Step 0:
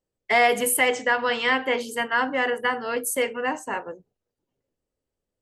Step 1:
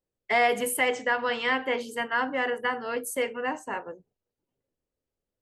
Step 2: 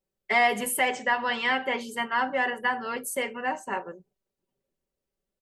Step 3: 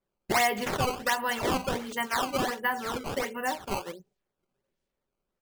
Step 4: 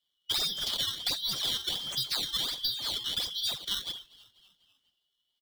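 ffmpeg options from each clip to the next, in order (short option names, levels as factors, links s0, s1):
-af "highshelf=f=4700:g=-5,volume=0.668"
-af "aecho=1:1:5.2:0.59"
-filter_complex "[0:a]asplit=2[s0][s1];[s1]acompressor=threshold=0.0251:ratio=6,volume=1[s2];[s0][s2]amix=inputs=2:normalize=0,acrusher=samples=14:mix=1:aa=0.000001:lfo=1:lforange=22.4:lforate=1.4,adynamicequalizer=threshold=0.00891:dfrequency=7100:dqfactor=0.7:tfrequency=7100:tqfactor=0.7:attack=5:release=100:ratio=0.375:range=2:mode=cutabove:tftype=highshelf,volume=0.596"
-filter_complex "[0:a]afftfilt=real='real(if(lt(b,272),68*(eq(floor(b/68),0)*2+eq(floor(b/68),1)*3+eq(floor(b/68),2)*0+eq(floor(b/68),3)*1)+mod(b,68),b),0)':imag='imag(if(lt(b,272),68*(eq(floor(b/68),0)*2+eq(floor(b/68),1)*3+eq(floor(b/68),2)*0+eq(floor(b/68),3)*1)+mod(b,68),b),0)':win_size=2048:overlap=0.75,acrossover=split=180|380|1300|6800[s0][s1][s2][s3][s4];[s0]acompressor=threshold=0.00251:ratio=4[s5];[s1]acompressor=threshold=0.00126:ratio=4[s6];[s2]acompressor=threshold=0.00355:ratio=4[s7];[s3]acompressor=threshold=0.02:ratio=4[s8];[s4]acompressor=threshold=0.01:ratio=4[s9];[s5][s6][s7][s8][s9]amix=inputs=5:normalize=0,asplit=5[s10][s11][s12][s13][s14];[s11]adelay=245,afreqshift=-78,volume=0.0794[s15];[s12]adelay=490,afreqshift=-156,volume=0.0427[s16];[s13]adelay=735,afreqshift=-234,volume=0.0232[s17];[s14]adelay=980,afreqshift=-312,volume=0.0124[s18];[s10][s15][s16][s17][s18]amix=inputs=5:normalize=0,volume=1.41"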